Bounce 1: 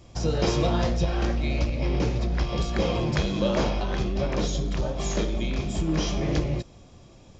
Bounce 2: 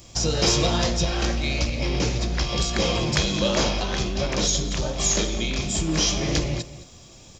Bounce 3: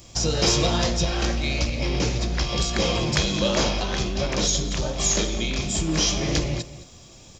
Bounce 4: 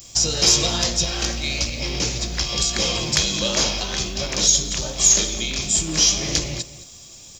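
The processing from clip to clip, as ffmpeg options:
-filter_complex "[0:a]acontrast=84,crystalizer=i=5:c=0,asplit=2[a][b];[b]adelay=215.7,volume=-15dB,highshelf=f=4k:g=-4.85[c];[a][c]amix=inputs=2:normalize=0,volume=-6.5dB"
-af anull
-af "crystalizer=i=4:c=0,volume=-3.5dB"

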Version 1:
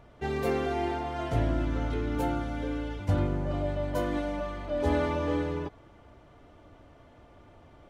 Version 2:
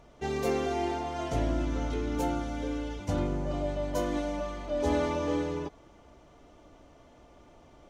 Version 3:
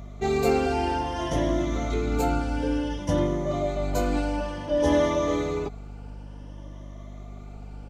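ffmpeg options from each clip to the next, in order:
-af "equalizer=f=100:t=o:w=0.67:g=-9,equalizer=f=1.6k:t=o:w=0.67:g=-4,equalizer=f=6.3k:t=o:w=0.67:g=9"
-af "afftfilt=real='re*pow(10,10/40*sin(2*PI*(1.2*log(max(b,1)*sr/1024/100)/log(2)-(0.56)*(pts-256)/sr)))':imag='im*pow(10,10/40*sin(2*PI*(1.2*log(max(b,1)*sr/1024/100)/log(2)-(0.56)*(pts-256)/sr)))':win_size=1024:overlap=0.75,aeval=exprs='val(0)+0.00708*(sin(2*PI*50*n/s)+sin(2*PI*2*50*n/s)/2+sin(2*PI*3*50*n/s)/3+sin(2*PI*4*50*n/s)/4+sin(2*PI*5*50*n/s)/5)':c=same,aresample=32000,aresample=44100,volume=4.5dB"

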